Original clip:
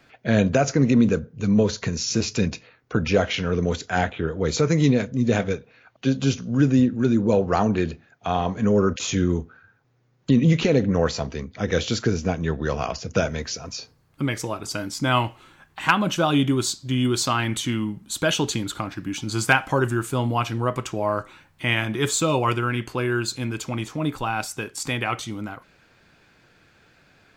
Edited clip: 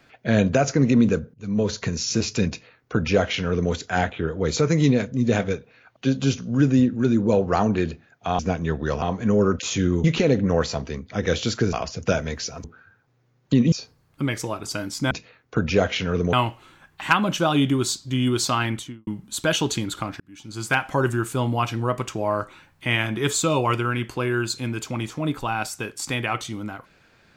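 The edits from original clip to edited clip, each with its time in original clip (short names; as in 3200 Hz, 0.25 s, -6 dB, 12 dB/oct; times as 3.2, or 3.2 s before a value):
1.34–1.75 fade in, from -22 dB
2.49–3.71 copy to 15.11
9.41–10.49 move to 13.72
12.18–12.81 move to 8.39
17.41–17.85 studio fade out
18.98–19.81 fade in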